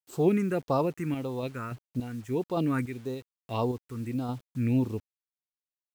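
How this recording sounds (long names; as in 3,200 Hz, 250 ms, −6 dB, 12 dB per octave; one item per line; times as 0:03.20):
phaser sweep stages 4, 1.7 Hz, lowest notch 670–2,000 Hz
sample-and-hold tremolo 3.5 Hz, depth 75%
a quantiser's noise floor 10 bits, dither none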